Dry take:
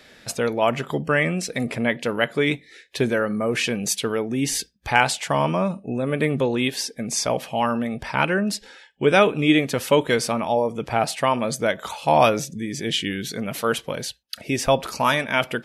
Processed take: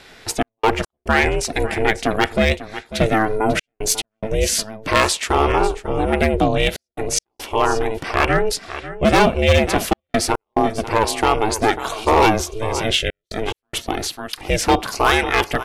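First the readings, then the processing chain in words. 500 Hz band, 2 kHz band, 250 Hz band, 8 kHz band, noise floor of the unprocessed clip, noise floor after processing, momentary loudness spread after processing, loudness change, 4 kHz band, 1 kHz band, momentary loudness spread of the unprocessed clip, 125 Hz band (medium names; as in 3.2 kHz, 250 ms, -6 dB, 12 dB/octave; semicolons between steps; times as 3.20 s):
+2.5 dB, +3.0 dB, +1.5 dB, +4.5 dB, -53 dBFS, -81 dBFS, 10 LU, +3.0 dB, +4.0 dB, +4.5 dB, 8 LU, +3.5 dB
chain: delay 545 ms -14.5 dB; hard clipper -14 dBFS, distortion -13 dB; trance gate "xx.x.xxxxxxxxxx" 71 bpm -60 dB; ring modulator 220 Hz; trim +8 dB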